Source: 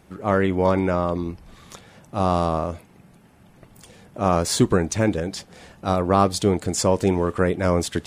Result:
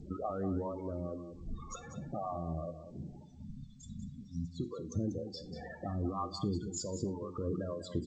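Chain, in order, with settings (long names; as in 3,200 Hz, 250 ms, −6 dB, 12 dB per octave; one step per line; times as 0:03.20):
mains-hum notches 60/120/180/240/300/360 Hz
0:03.25–0:04.57: time-frequency box erased 260–3,400 Hz
0:04.27–0:04.94: low-shelf EQ 120 Hz −6.5 dB
0:05.88–0:06.77: comb filter 0.9 ms, depth 38%
dynamic equaliser 160 Hz, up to +3 dB, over −36 dBFS, Q 1.2
brickwall limiter −14 dBFS, peak gain reduction 10 dB
downward compressor 16 to 1, threshold −37 dBFS, peak gain reduction 19 dB
spectral peaks only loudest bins 16
two-band tremolo in antiphase 2 Hz, depth 100%, crossover 500 Hz
single-tap delay 191 ms −10.5 dB
convolution reverb, pre-delay 3 ms, DRR 11 dB
level +9.5 dB
G.722 64 kbit/s 16,000 Hz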